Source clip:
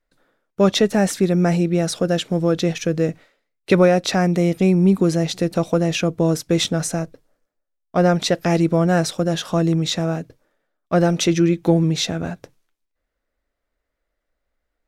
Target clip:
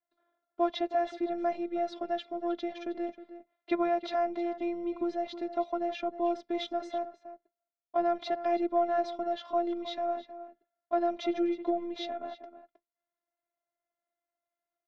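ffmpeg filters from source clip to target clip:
ffmpeg -i in.wav -filter_complex "[0:a]highpass=260,equalizer=frequency=440:width_type=q:width=4:gain=-5,equalizer=frequency=630:width_type=q:width=4:gain=7,equalizer=frequency=900:width_type=q:width=4:gain=3,equalizer=frequency=1600:width_type=q:width=4:gain=-5,equalizer=frequency=2700:width_type=q:width=4:gain=-8,lowpass=frequency=3500:width=0.5412,lowpass=frequency=3500:width=1.3066,afftfilt=real='hypot(re,im)*cos(PI*b)':imag='0':win_size=512:overlap=0.75,asplit=2[link_01][link_02];[link_02]adelay=314.9,volume=-13dB,highshelf=frequency=4000:gain=-7.08[link_03];[link_01][link_03]amix=inputs=2:normalize=0,volume=-8dB" out.wav

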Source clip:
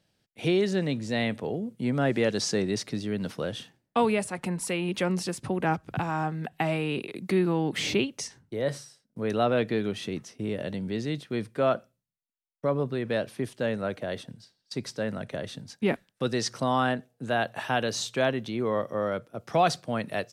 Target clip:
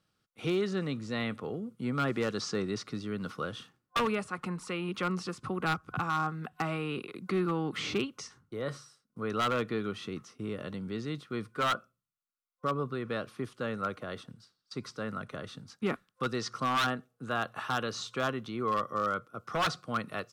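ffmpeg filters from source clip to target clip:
ffmpeg -i in.wav -filter_complex "[0:a]acrossover=split=6800[link_01][link_02];[link_02]acompressor=threshold=-57dB:ratio=4:attack=1:release=60[link_03];[link_01][link_03]amix=inputs=2:normalize=0,superequalizer=8b=0.631:10b=3.98,aeval=exprs='0.15*(abs(mod(val(0)/0.15+3,4)-2)-1)':channel_layout=same,volume=-5.5dB" out.wav

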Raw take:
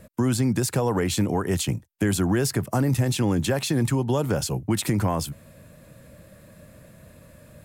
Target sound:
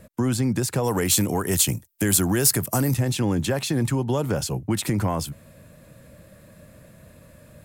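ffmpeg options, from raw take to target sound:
ffmpeg -i in.wav -filter_complex "[0:a]asplit=3[link_01][link_02][link_03];[link_01]afade=type=out:start_time=0.83:duration=0.02[link_04];[link_02]aemphasis=mode=production:type=75kf,afade=type=in:start_time=0.83:duration=0.02,afade=type=out:start_time=2.93:duration=0.02[link_05];[link_03]afade=type=in:start_time=2.93:duration=0.02[link_06];[link_04][link_05][link_06]amix=inputs=3:normalize=0,acontrast=65,volume=-6.5dB" out.wav

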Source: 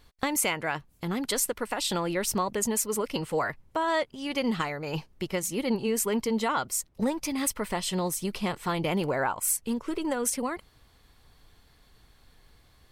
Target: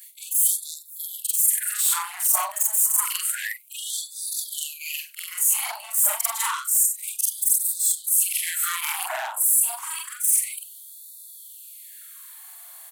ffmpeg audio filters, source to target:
ffmpeg -i in.wav -filter_complex "[0:a]afftfilt=real='re':imag='-im':win_size=4096:overlap=0.75,aecho=1:1:99:0.0944,asplit=2[link_01][link_02];[link_02]aeval=exprs='0.133*sin(PI/2*3.98*val(0)/0.133)':channel_layout=same,volume=-6dB[link_03];[link_01][link_03]amix=inputs=2:normalize=0,aexciter=amount=10.4:drive=3.9:freq=7300,areverse,acompressor=threshold=-21dB:ratio=6,areverse,afftfilt=real='re*gte(b*sr/1024,570*pow(3500/570,0.5+0.5*sin(2*PI*0.29*pts/sr)))':imag='im*gte(b*sr/1024,570*pow(3500/570,0.5+0.5*sin(2*PI*0.29*pts/sr)))':win_size=1024:overlap=0.75,volume=2.5dB" out.wav

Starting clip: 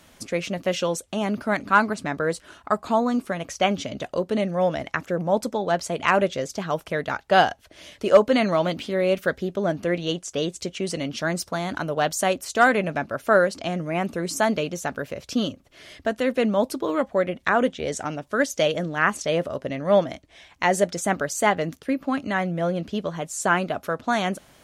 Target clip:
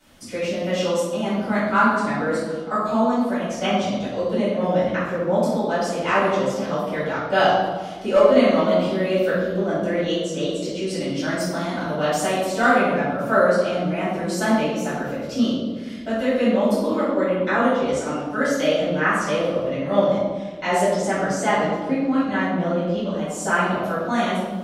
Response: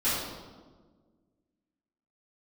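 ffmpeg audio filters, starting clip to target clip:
-filter_complex "[0:a]asettb=1/sr,asplit=3[link_01][link_02][link_03];[link_01]atrim=end=20.844[link_04];[link_02]atrim=start=20.84:end=23.11,asetpts=PTS-STARTPTS,afade=type=in:duration=0.004:curve=qsin,afade=type=out:start_time=2.266:duration=0.004:curve=qsin,lowpass=8500[link_05];[link_03]atrim=start=23.106[link_06];[link_04][link_05]acrossfade=duration=0.004:curve1=hsin:curve2=qsin[link_07];[link_07][link_06]acrossfade=duration=0.004:curve1=qsin:curve2=hsin[link_08];[1:a]atrim=start_sample=2205[link_09];[link_08][link_09]afir=irnorm=-1:irlink=0,volume=-10dB"

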